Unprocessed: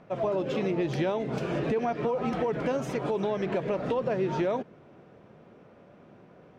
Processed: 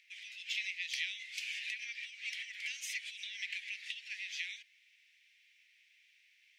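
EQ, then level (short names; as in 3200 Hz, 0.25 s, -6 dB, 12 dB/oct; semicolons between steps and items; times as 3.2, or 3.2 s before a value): steep high-pass 2000 Hz 72 dB/oct; +6.0 dB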